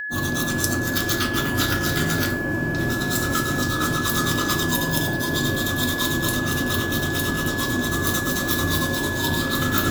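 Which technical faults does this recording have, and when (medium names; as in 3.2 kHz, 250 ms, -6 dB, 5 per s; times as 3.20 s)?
whine 1.7 kHz -27 dBFS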